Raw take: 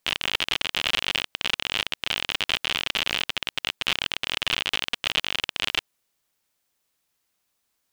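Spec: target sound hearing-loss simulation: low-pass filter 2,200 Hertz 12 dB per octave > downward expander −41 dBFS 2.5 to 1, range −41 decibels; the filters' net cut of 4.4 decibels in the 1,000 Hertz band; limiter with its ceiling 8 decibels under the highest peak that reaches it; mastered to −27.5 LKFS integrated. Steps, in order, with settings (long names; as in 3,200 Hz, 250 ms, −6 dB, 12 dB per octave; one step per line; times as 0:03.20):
parametric band 1,000 Hz −5.5 dB
brickwall limiter −10.5 dBFS
low-pass filter 2,200 Hz 12 dB per octave
downward expander −41 dBFS 2.5 to 1, range −41 dB
level +6.5 dB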